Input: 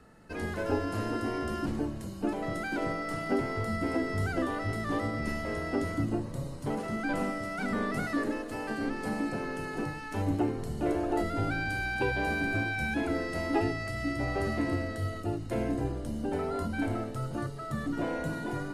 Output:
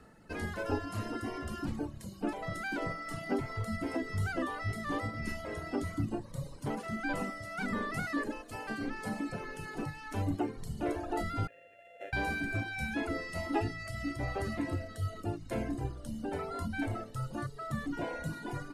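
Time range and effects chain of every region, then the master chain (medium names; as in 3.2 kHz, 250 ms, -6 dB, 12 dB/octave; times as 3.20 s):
11.47–12.13 s: sorted samples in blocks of 64 samples + vowel filter e + peaking EQ 4.8 kHz -14.5 dB 0.8 oct
whole clip: dynamic bell 400 Hz, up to -4 dB, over -40 dBFS, Q 0.82; reverb removal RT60 1.4 s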